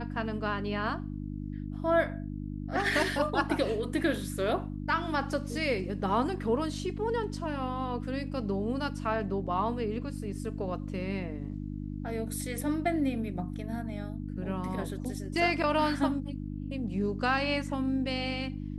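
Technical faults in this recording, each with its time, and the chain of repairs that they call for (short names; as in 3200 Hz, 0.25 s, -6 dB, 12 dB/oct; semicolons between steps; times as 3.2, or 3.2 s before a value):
hum 50 Hz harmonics 6 -37 dBFS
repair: de-hum 50 Hz, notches 6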